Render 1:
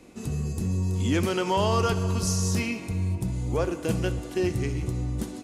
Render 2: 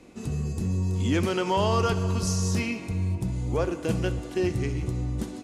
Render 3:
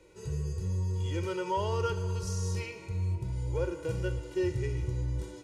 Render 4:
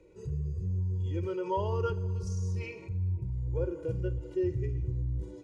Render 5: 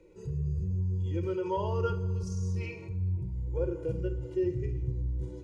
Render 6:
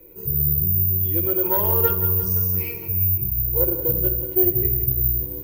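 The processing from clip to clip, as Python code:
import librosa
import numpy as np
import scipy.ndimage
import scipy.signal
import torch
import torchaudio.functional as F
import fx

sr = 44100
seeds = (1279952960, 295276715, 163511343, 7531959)

y1 = fx.high_shelf(x, sr, hz=11000.0, db=-10.5)
y2 = y1 + 0.98 * np.pad(y1, (int(2.1 * sr / 1000.0), 0))[:len(y1)]
y2 = fx.hpss(y2, sr, part='percussive', gain_db=-12)
y2 = fx.rider(y2, sr, range_db=4, speed_s=2.0)
y2 = y2 * 10.0 ** (-8.5 / 20.0)
y3 = fx.envelope_sharpen(y2, sr, power=1.5)
y4 = fx.room_shoebox(y3, sr, seeds[0], volume_m3=850.0, walls='furnished', distance_m=0.8)
y5 = fx.self_delay(y4, sr, depth_ms=0.12)
y5 = fx.echo_feedback(y5, sr, ms=170, feedback_pct=56, wet_db=-11.5)
y5 = (np.kron(scipy.signal.resample_poly(y5, 1, 3), np.eye(3)[0]) * 3)[:len(y5)]
y5 = y5 * 10.0 ** (6.0 / 20.0)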